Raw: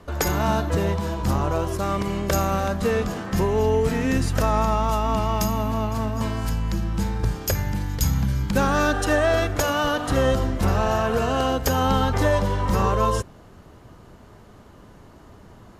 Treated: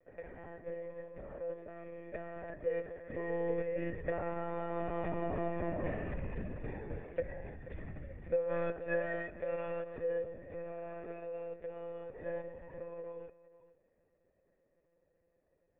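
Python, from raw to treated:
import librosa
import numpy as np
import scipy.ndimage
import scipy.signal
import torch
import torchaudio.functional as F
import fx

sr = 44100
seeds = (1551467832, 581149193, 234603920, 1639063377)

p1 = fx.doppler_pass(x, sr, speed_mps=24, closest_m=19.0, pass_at_s=5.66)
p2 = fx.formant_cascade(p1, sr, vowel='e')
p3 = p2 + fx.echo_single(p2, sr, ms=471, db=-17.5, dry=0)
p4 = fx.lpc_monotone(p3, sr, seeds[0], pitch_hz=170.0, order=16)
y = p4 * librosa.db_to_amplitude(6.0)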